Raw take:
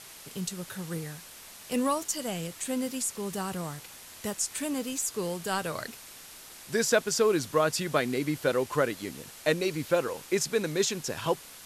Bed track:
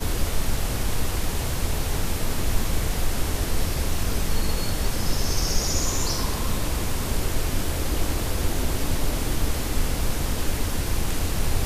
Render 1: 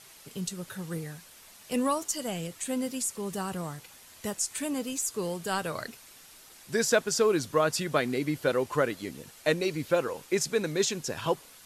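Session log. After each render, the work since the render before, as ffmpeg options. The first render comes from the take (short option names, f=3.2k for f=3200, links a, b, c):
-af "afftdn=nr=6:nf=-48"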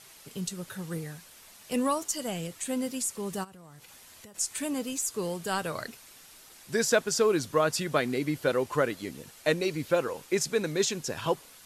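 -filter_complex "[0:a]asplit=3[a][b][c];[a]afade=t=out:st=3.43:d=0.02[d];[b]acompressor=threshold=-46dB:ratio=12:attack=3.2:release=140:knee=1:detection=peak,afade=t=in:st=3.43:d=0.02,afade=t=out:st=4.34:d=0.02[e];[c]afade=t=in:st=4.34:d=0.02[f];[d][e][f]amix=inputs=3:normalize=0"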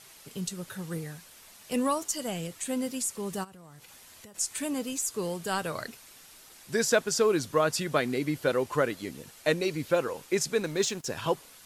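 -filter_complex "[0:a]asettb=1/sr,asplit=3[a][b][c];[a]atrim=end=10.604[d];[b]atrim=start=10.6:end=11.06,asetpts=PTS-STARTPTS,afade=t=in:d=0.004:c=qsin,afade=t=out:st=0.456:d=0.004:c=qsin,aeval=exprs='sgn(val(0))*max(abs(val(0))-0.00447,0)':c=same[e];[c]atrim=start=11.056[f];[d][e]acrossfade=d=0.004:c1=hsin:c2=qsin[g];[g][f]acrossfade=d=0.004:c1=qsin:c2=hsin"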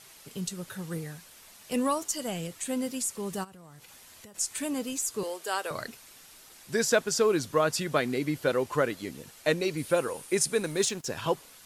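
-filter_complex "[0:a]asettb=1/sr,asplit=3[a][b][c];[a]atrim=end=5.234[d];[b]atrim=start=5.23:end=5.71,asetpts=PTS-STARTPTS,afade=t=in:d=0.004:c=qsin,afade=t=out:st=0.476:d=0.004:c=qsin,highpass=f=380:w=0.5412,highpass=f=380:w=1.3066[e];[c]atrim=start=5.706[f];[d][e]acrossfade=d=0.004:c1=hsin:c2=qsin[g];[g][f]acrossfade=d=0.004:c1=qsin:c2=hsin,asettb=1/sr,asplit=3[h][i][j];[h]atrim=end=9.774[k];[i]atrim=start=9.77:end=10.89,asetpts=PTS-STARTPTS,afade=t=in:d=0.004:c=qsin,afade=t=out:st=1.116:d=0.004:c=qsin,equalizer=f=9.5k:t=o:w=0.29:g=14.5[l];[j]atrim=start=10.886[m];[k][l]acrossfade=d=0.004:c1=hsin:c2=qsin[n];[n][m]acrossfade=d=0.004:c1=qsin:c2=hsin"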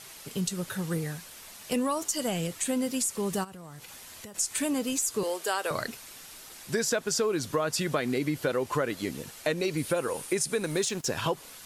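-filter_complex "[0:a]asplit=2[a][b];[b]alimiter=limit=-21.5dB:level=0:latency=1:release=66,volume=-1dB[c];[a][c]amix=inputs=2:normalize=0,acompressor=threshold=-25dB:ratio=4"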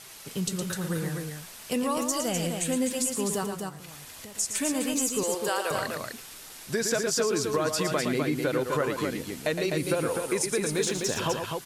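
-af "aecho=1:1:113.7|253.6:0.447|0.562"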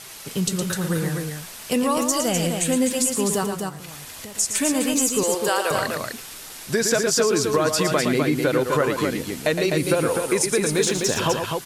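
-af "volume=6.5dB"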